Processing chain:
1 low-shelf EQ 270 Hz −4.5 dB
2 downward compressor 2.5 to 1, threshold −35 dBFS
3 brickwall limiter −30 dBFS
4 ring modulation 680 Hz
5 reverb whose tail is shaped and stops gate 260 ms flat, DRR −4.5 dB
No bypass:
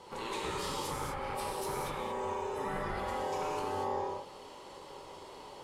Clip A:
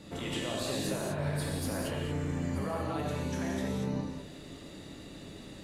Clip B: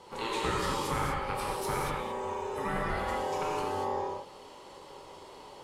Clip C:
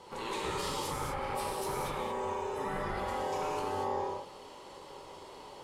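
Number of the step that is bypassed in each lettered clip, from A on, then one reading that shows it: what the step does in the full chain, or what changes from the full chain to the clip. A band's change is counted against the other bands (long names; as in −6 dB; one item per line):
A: 4, 1 kHz band −10.0 dB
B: 3, average gain reduction 2.0 dB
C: 2, average gain reduction 5.0 dB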